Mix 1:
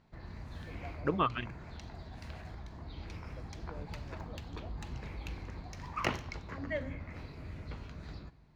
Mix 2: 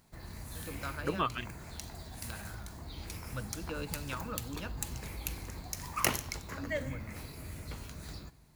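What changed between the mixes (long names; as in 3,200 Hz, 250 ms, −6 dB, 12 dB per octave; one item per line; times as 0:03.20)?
first voice: remove transistor ladder low-pass 770 Hz, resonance 75%
second voice −3.0 dB
master: remove high-frequency loss of the air 220 metres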